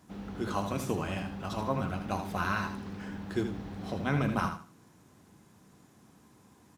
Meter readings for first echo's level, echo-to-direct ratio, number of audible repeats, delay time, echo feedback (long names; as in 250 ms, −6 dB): −8.0 dB, −7.5 dB, 3, 79 ms, 25%